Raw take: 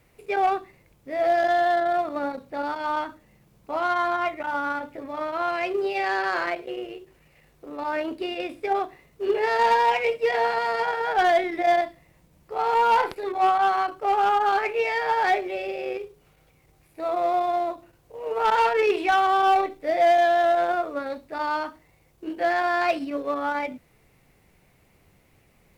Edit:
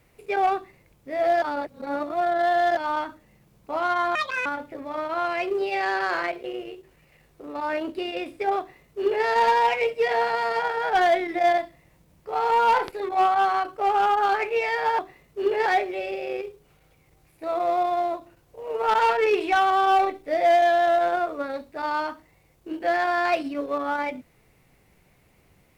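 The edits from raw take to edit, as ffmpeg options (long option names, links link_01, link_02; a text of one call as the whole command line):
ffmpeg -i in.wav -filter_complex "[0:a]asplit=7[link_01][link_02][link_03][link_04][link_05][link_06][link_07];[link_01]atrim=end=1.422[link_08];[link_02]atrim=start=1.418:end=2.772,asetpts=PTS-STARTPTS,areverse[link_09];[link_03]atrim=start=2.768:end=4.154[link_10];[link_04]atrim=start=4.15:end=4.69,asetpts=PTS-STARTPTS,asetrate=77616,aresample=44100[link_11];[link_05]atrim=start=4.686:end=15.222[link_12];[link_06]atrim=start=8.818:end=9.492[link_13];[link_07]atrim=start=15.218[link_14];[link_08][link_09]acrossfade=duration=0.004:curve1=hsin:curve2=hsin[link_15];[link_15][link_10]acrossfade=duration=0.004:curve1=hsin:curve2=hsin[link_16];[link_16][link_11]acrossfade=duration=0.004:curve1=hsin:curve2=hsin[link_17];[link_17][link_12]acrossfade=duration=0.004:curve1=hsin:curve2=hsin[link_18];[link_18][link_13]acrossfade=duration=0.004:curve1=hsin:curve2=hsin[link_19];[link_19][link_14]acrossfade=duration=0.004:curve1=hsin:curve2=hsin" out.wav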